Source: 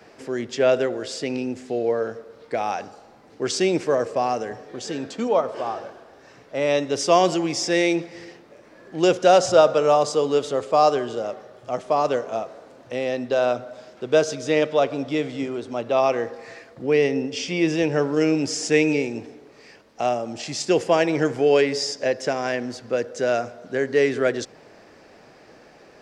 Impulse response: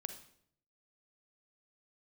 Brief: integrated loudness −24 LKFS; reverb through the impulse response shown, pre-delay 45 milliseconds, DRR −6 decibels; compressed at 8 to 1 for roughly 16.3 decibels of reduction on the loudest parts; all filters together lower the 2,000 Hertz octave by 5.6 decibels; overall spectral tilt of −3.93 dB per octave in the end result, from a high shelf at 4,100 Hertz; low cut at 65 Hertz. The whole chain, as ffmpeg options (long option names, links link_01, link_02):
-filter_complex "[0:a]highpass=65,equalizer=frequency=2000:width_type=o:gain=-8.5,highshelf=frequency=4100:gain=4,acompressor=threshold=-28dB:ratio=8,asplit=2[link_01][link_02];[1:a]atrim=start_sample=2205,adelay=45[link_03];[link_02][link_03]afir=irnorm=-1:irlink=0,volume=8.5dB[link_04];[link_01][link_04]amix=inputs=2:normalize=0,volume=1.5dB"